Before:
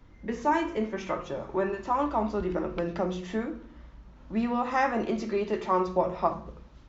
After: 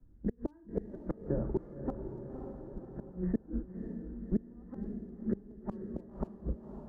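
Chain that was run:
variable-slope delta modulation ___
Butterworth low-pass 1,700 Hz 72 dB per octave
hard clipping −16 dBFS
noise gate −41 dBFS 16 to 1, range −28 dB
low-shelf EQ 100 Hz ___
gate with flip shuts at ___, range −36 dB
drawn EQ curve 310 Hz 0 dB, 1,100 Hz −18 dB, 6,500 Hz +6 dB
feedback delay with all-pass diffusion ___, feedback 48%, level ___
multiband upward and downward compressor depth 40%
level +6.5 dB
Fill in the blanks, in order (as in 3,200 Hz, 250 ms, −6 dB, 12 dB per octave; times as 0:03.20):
32 kbit/s, +10.5 dB, −22 dBFS, 545 ms, −10 dB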